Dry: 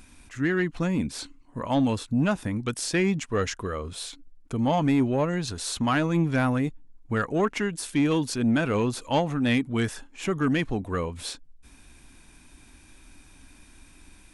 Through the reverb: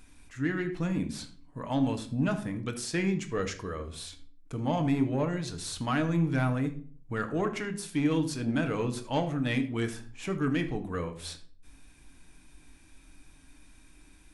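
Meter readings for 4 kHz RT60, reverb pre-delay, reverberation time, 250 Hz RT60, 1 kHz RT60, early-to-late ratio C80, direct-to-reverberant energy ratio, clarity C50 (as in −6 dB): 0.35 s, 6 ms, 0.45 s, 0.55 s, 0.40 s, 15.5 dB, 6.0 dB, 12.0 dB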